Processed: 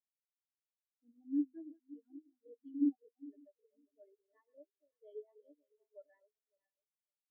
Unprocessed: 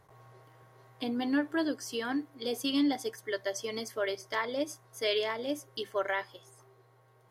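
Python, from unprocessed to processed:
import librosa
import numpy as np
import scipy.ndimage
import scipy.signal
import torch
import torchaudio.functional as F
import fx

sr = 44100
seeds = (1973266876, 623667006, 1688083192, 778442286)

y = fx.reverse_delay_fb(x, sr, ms=278, feedback_pct=71, wet_db=-5.0)
y = fx.spectral_expand(y, sr, expansion=4.0)
y = y * 10.0 ** (-6.0 / 20.0)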